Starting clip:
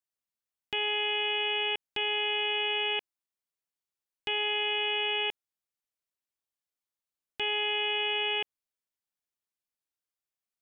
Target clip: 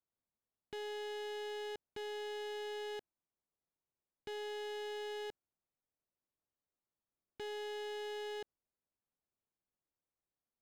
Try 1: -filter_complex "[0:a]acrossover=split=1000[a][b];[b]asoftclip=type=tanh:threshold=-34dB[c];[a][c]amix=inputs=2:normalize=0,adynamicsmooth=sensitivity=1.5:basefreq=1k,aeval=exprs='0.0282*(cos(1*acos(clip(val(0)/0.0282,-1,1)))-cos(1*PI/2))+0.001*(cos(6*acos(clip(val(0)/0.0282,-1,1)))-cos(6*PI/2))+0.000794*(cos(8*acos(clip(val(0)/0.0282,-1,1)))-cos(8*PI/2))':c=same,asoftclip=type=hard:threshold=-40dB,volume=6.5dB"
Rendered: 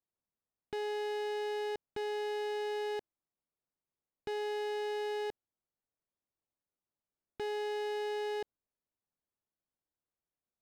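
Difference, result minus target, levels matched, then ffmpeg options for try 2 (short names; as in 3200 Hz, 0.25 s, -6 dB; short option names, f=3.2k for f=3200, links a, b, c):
hard clip: distortion -4 dB
-filter_complex "[0:a]acrossover=split=1000[a][b];[b]asoftclip=type=tanh:threshold=-34dB[c];[a][c]amix=inputs=2:normalize=0,adynamicsmooth=sensitivity=1.5:basefreq=1k,aeval=exprs='0.0282*(cos(1*acos(clip(val(0)/0.0282,-1,1)))-cos(1*PI/2))+0.001*(cos(6*acos(clip(val(0)/0.0282,-1,1)))-cos(6*PI/2))+0.000794*(cos(8*acos(clip(val(0)/0.0282,-1,1)))-cos(8*PI/2))':c=same,asoftclip=type=hard:threshold=-47.5dB,volume=6.5dB"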